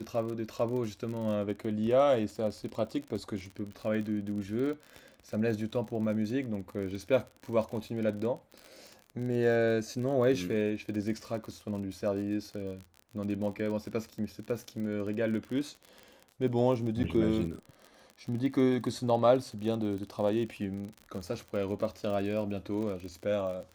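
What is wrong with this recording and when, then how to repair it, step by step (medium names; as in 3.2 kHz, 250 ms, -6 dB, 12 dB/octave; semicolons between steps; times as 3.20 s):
crackle 41 per s -37 dBFS
17.03–17.04 s: dropout 9.1 ms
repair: de-click; interpolate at 17.03 s, 9.1 ms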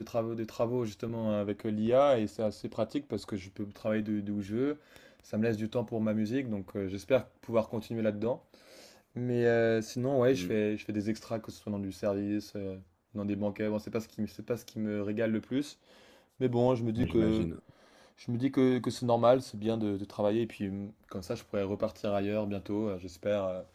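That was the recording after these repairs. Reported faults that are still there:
nothing left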